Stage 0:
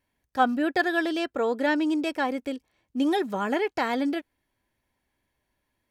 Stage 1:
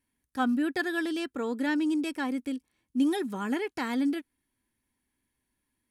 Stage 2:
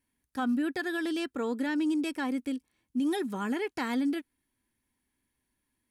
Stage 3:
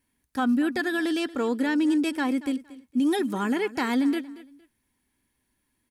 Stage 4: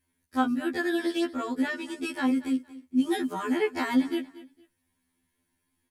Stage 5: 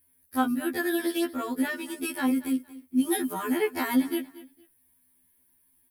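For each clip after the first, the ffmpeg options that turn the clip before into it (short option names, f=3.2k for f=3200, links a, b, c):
-af "equalizer=f=250:t=o:w=0.67:g=7,equalizer=f=630:t=o:w=0.67:g=-9,equalizer=f=10k:t=o:w=0.67:g=11,volume=-5dB"
-af "alimiter=limit=-22.5dB:level=0:latency=1:release=80"
-af "aecho=1:1:231|462:0.133|0.0333,volume=5.5dB"
-af "afftfilt=real='re*2*eq(mod(b,4),0)':imag='im*2*eq(mod(b,4),0)':win_size=2048:overlap=0.75"
-af "aexciter=amount=8.7:drive=4.8:freq=10k"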